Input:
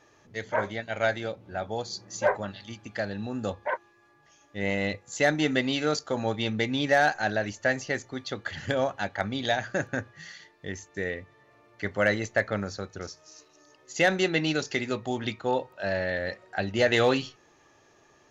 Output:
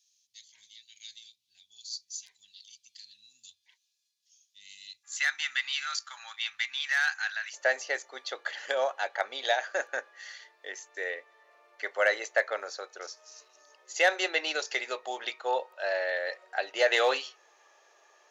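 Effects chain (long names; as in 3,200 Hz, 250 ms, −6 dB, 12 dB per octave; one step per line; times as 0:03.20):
inverse Chebyshev high-pass filter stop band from 1,500 Hz, stop band 50 dB, from 0:05.03 stop band from 490 Hz, from 0:07.52 stop band from 190 Hz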